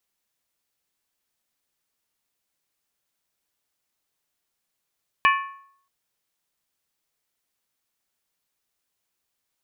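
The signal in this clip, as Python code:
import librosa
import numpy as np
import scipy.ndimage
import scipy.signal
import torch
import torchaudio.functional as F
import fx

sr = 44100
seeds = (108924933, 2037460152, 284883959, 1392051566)

y = fx.strike_skin(sr, length_s=0.63, level_db=-14, hz=1100.0, decay_s=0.63, tilt_db=3.0, modes=5)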